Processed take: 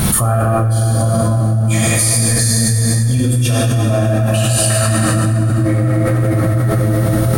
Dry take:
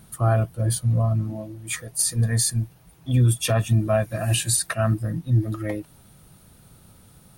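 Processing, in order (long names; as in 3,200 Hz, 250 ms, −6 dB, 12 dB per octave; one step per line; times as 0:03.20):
dense smooth reverb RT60 5 s, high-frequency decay 0.55×, DRR −8 dB
envelope flattener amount 100%
level −6.5 dB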